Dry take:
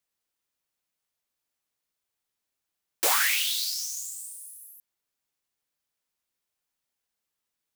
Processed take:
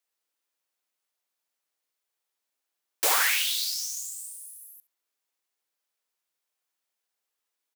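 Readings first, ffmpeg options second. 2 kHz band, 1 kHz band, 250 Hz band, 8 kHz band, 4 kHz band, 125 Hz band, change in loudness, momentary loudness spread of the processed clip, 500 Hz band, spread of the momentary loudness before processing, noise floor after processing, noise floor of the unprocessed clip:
+0.5 dB, +1.0 dB, -2.5 dB, 0.0 dB, 0.0 dB, n/a, 0.0 dB, 18 LU, 0.0 dB, 18 LU, -85 dBFS, -85 dBFS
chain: -filter_complex "[0:a]highpass=350,asplit=2[a][b];[b]adelay=69,lowpass=f=1.9k:p=1,volume=-6dB,asplit=2[c][d];[d]adelay=69,lowpass=f=1.9k:p=1,volume=0.39,asplit=2[e][f];[f]adelay=69,lowpass=f=1.9k:p=1,volume=0.39,asplit=2[g][h];[h]adelay=69,lowpass=f=1.9k:p=1,volume=0.39,asplit=2[i][j];[j]adelay=69,lowpass=f=1.9k:p=1,volume=0.39[k];[c][e][g][i][k]amix=inputs=5:normalize=0[l];[a][l]amix=inputs=2:normalize=0"

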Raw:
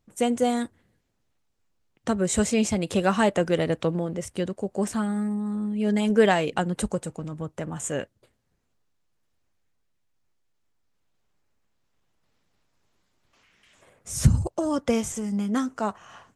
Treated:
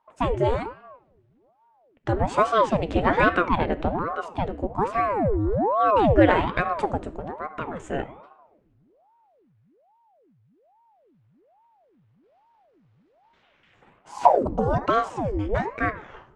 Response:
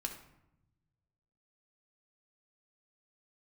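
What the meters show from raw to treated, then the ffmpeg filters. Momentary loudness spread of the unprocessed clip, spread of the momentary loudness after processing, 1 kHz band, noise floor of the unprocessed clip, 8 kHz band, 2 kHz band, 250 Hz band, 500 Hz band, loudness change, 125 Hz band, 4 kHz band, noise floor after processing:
11 LU, 14 LU, +9.0 dB, -72 dBFS, under -15 dB, +4.5 dB, -2.5 dB, +2.5 dB, +2.0 dB, -0.5 dB, -3.5 dB, -63 dBFS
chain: -filter_complex "[0:a]lowpass=2.5k,asplit=2[a][b];[1:a]atrim=start_sample=2205[c];[b][c]afir=irnorm=-1:irlink=0,volume=-1.5dB[d];[a][d]amix=inputs=2:normalize=0,aeval=exprs='val(0)*sin(2*PI*520*n/s+520*0.8/1.2*sin(2*PI*1.2*n/s))':c=same"

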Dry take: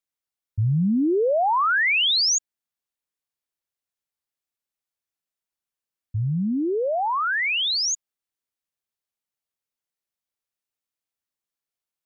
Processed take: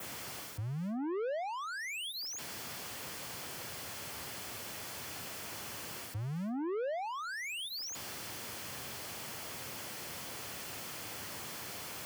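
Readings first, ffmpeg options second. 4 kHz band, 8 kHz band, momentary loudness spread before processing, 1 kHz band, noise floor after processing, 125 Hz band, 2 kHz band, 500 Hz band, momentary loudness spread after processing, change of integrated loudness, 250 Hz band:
-16.0 dB, n/a, 10 LU, -15.5 dB, -44 dBFS, -15.0 dB, -16.0 dB, -13.0 dB, 5 LU, -18.5 dB, -14.5 dB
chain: -filter_complex "[0:a]aeval=exprs='val(0)+0.5*0.0266*sgn(val(0))':c=same,areverse,acompressor=threshold=-30dB:ratio=6,areverse,adynamicequalizer=threshold=0.00631:dfrequency=4900:dqfactor=1.6:tfrequency=4900:tqfactor=1.6:attack=5:release=100:ratio=0.375:range=1.5:mode=boostabove:tftype=bell,acrossover=split=190[a][b];[b]asoftclip=type=tanh:threshold=-37.5dB[c];[a][c]amix=inputs=2:normalize=0,acrossover=split=420|4900[d][e][f];[d]acompressor=threshold=-46dB:ratio=4[g];[e]acompressor=threshold=-41dB:ratio=4[h];[f]acompressor=threshold=-46dB:ratio=4[i];[g][h][i]amix=inputs=3:normalize=0,highpass=f=82:w=0.5412,highpass=f=82:w=1.3066,tiltshelf=f=970:g=3,bandreject=f=3.8k:w=12,volume=3.5dB"

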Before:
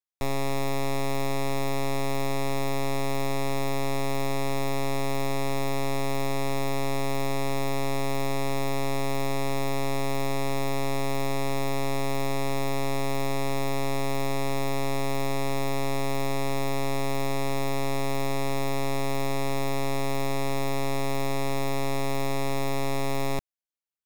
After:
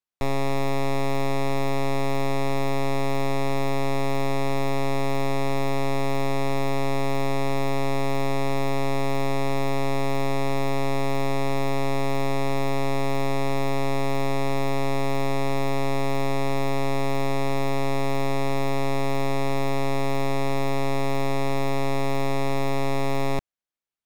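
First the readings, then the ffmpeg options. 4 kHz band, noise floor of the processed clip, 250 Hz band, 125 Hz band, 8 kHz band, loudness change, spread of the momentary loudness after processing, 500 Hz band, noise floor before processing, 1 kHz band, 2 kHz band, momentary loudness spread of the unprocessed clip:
+0.5 dB, -21 dBFS, +3.5 dB, +3.5 dB, -3.0 dB, +3.0 dB, 0 LU, +3.5 dB, -25 dBFS, +3.5 dB, +2.5 dB, 0 LU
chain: -af "highshelf=f=5.8k:g=-10,volume=3.5dB"

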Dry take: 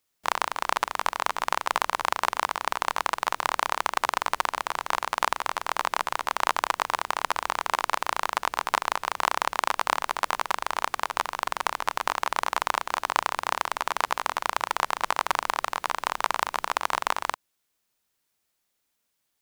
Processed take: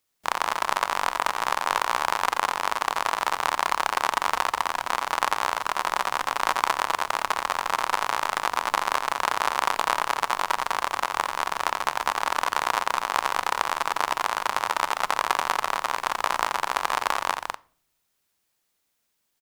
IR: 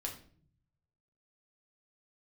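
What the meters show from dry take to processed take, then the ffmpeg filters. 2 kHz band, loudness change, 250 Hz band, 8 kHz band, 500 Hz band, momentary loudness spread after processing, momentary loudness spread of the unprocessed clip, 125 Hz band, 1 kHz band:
+2.0 dB, +2.0 dB, +2.0 dB, +2.0 dB, +2.0 dB, 2 LU, 3 LU, n/a, +2.0 dB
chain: -filter_complex "[0:a]aecho=1:1:87.46|204.1:0.355|0.708,asplit=2[a][b];[1:a]atrim=start_sample=2205[c];[b][c]afir=irnorm=-1:irlink=0,volume=-15dB[d];[a][d]amix=inputs=2:normalize=0,volume=-1dB"

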